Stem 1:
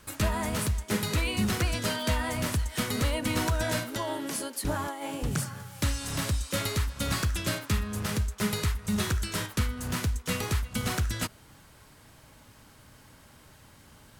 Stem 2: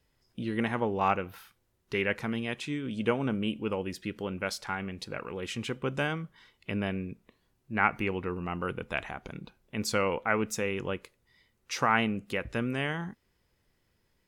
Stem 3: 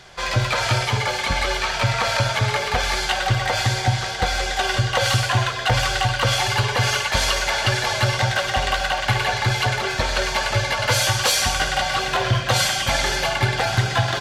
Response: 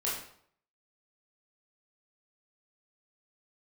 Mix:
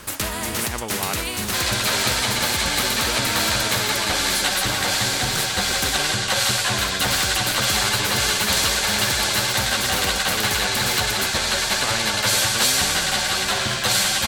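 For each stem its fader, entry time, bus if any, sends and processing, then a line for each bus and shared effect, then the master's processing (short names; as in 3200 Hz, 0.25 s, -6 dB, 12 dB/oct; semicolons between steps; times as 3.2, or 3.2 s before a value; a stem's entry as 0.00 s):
-3.0 dB, 0.00 s, muted 5.98–6.78, no send, dry
-5.5 dB, 0.00 s, no send, dry
-3.0 dB, 1.35 s, no send, thirty-one-band EQ 200 Hz +10 dB, 1600 Hz +6 dB, 4000 Hz +12 dB, 8000 Hz +9 dB; ensemble effect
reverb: off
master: spectral compressor 2:1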